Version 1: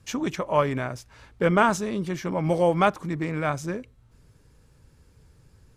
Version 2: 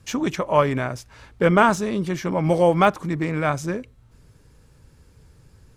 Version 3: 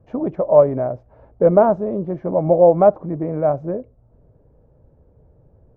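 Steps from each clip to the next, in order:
de-esser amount 65%; trim +4 dB
resonant low-pass 630 Hz, resonance Q 3.5; trim -1.5 dB

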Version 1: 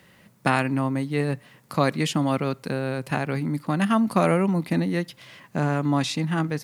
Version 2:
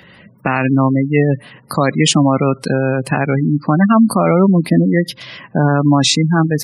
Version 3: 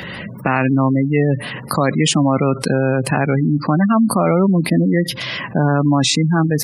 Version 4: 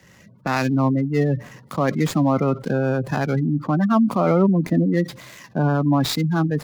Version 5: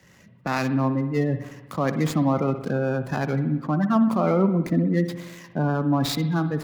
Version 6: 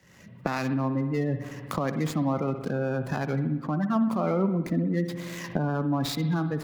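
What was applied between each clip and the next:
spectral gate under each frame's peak -20 dB strong; treble shelf 4.6 kHz +10 dB; loudness maximiser +12.5 dB; trim -1 dB
dynamic bell 4.6 kHz, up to -4 dB, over -33 dBFS, Q 0.79; level flattener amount 50%; trim -4.5 dB
median filter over 15 samples; three bands expanded up and down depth 100%; trim -3.5 dB
spring tank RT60 1.1 s, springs 58 ms, chirp 70 ms, DRR 10 dB; trim -3.5 dB
recorder AGC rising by 30 dB/s; trim -5 dB

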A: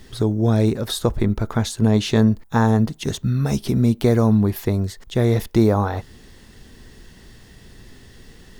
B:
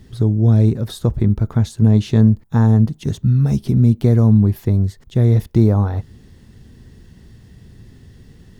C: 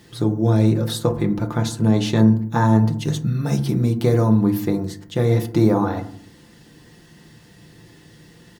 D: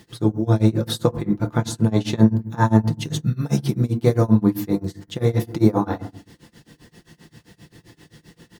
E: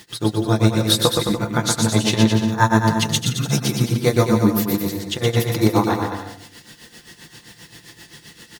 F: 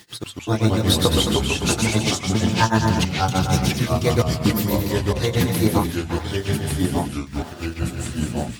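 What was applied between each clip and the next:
peaking EQ 110 Hz +14.5 dB 2.9 oct; trim -7.5 dB
high-pass 530 Hz 6 dB/octave; comb 5.8 ms, depth 48%; FDN reverb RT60 0.58 s, low-frequency decay 1.5×, high-frequency decay 0.35×, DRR 5.5 dB; trim +4.5 dB
tremolo 7.6 Hz, depth 95%; trim +2.5 dB
tilt shelf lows -6.5 dB, about 930 Hz; on a send: bouncing-ball echo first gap 120 ms, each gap 0.8×, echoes 5; on the sum: trim +4 dB
trance gate "x.xxxx.xx.xx" 64 bpm -60 dB; ever faster or slower copies 109 ms, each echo -3 st, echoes 3; trim -3 dB

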